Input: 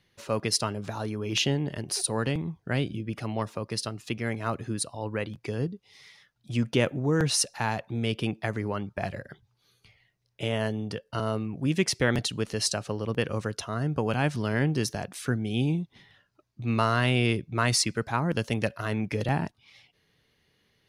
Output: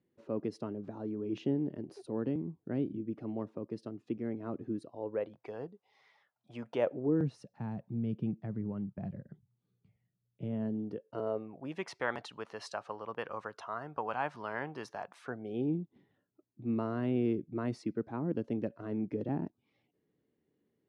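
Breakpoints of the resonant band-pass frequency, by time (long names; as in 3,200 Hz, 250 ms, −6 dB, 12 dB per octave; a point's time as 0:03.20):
resonant band-pass, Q 2
0:04.78 300 Hz
0:05.47 780 Hz
0:06.76 780 Hz
0:07.35 180 Hz
0:10.45 180 Hz
0:11.87 980 Hz
0:15.18 980 Hz
0:15.76 300 Hz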